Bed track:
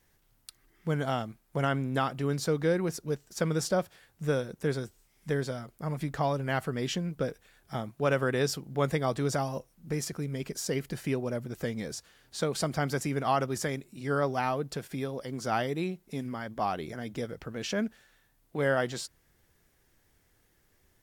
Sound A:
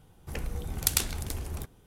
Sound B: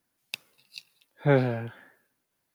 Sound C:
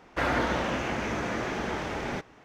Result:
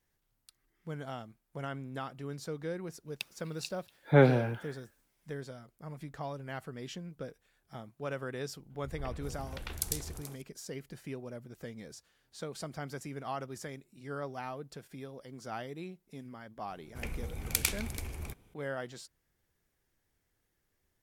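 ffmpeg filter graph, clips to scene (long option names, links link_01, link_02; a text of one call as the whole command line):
ffmpeg -i bed.wav -i cue0.wav -i cue1.wav -filter_complex "[1:a]asplit=2[link_01][link_02];[0:a]volume=-11dB[link_03];[2:a]dynaudnorm=framelen=190:gausssize=5:maxgain=8dB[link_04];[link_01]acrossover=split=200|3400[link_05][link_06][link_07];[link_06]adelay=140[link_08];[link_07]adelay=390[link_09];[link_05][link_08][link_09]amix=inputs=3:normalize=0[link_10];[link_02]equalizer=frequency=2300:width=5.3:gain=12[link_11];[link_04]atrim=end=2.54,asetpts=PTS-STARTPTS,volume=-6.5dB,afade=type=in:duration=0.004:curve=hsin,afade=type=out:start_time=2.536:duration=0.004:curve=hsin,adelay=2870[link_12];[link_10]atrim=end=1.86,asetpts=PTS-STARTPTS,volume=-8dB,afade=type=in:duration=0.004:curve=hsin,afade=type=out:start_time=1.856:duration=0.004:curve=hsin,adelay=8560[link_13];[link_11]atrim=end=1.86,asetpts=PTS-STARTPTS,volume=-5dB,afade=type=in:duration=0.004:curve=hsin,afade=type=out:start_time=1.856:duration=0.004:curve=hsin,adelay=735588S[link_14];[link_03][link_12][link_13][link_14]amix=inputs=4:normalize=0" out.wav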